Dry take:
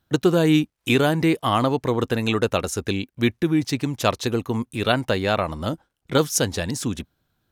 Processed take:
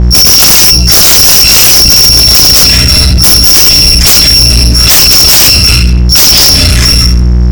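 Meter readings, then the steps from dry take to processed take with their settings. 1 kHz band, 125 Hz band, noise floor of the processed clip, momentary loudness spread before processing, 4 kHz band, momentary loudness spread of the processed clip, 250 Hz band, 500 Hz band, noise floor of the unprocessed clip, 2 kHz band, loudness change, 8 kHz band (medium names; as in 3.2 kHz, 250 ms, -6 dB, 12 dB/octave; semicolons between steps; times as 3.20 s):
+7.5 dB, +17.5 dB, -5 dBFS, 9 LU, +29.0 dB, 4 LU, +6.0 dB, +2.5 dB, -76 dBFS, +15.5 dB, +22.0 dB, +28.0 dB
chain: bit-reversed sample order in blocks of 256 samples; in parallel at -6.5 dB: hard clipper -17.5 dBFS, distortion -10 dB; on the sum: touch-sensitive phaser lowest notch 330 Hz, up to 1.8 kHz, full sweep at -14.5 dBFS; resonant low-pass 5.3 kHz, resonance Q 13; band-stop 2.8 kHz, Q 20; dynamic bell 2.8 kHz, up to +7 dB, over -31 dBFS, Q 3.4; simulated room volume 100 m³, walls mixed, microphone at 2.7 m; integer overflow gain -1.5 dB; mains buzz 60 Hz, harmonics 3, -20 dBFS -6 dB/octave; waveshaping leveller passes 5; peak limiter -4.5 dBFS, peak gain reduction 7 dB; trim +3.5 dB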